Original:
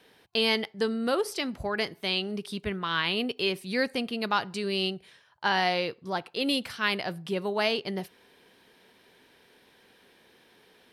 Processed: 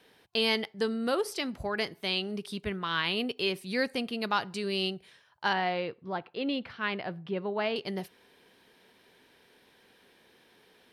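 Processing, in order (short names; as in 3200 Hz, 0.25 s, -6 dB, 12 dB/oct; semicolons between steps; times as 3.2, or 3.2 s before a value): 5.53–7.76 air absorption 320 m; gain -2 dB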